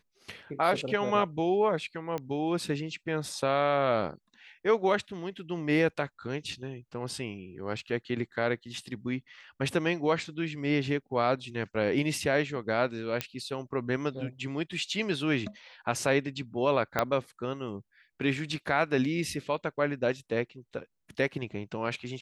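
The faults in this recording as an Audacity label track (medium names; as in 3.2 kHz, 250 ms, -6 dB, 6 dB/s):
2.180000	2.180000	pop -21 dBFS
13.210000	13.210000	pop -13 dBFS
16.990000	16.990000	pop -11 dBFS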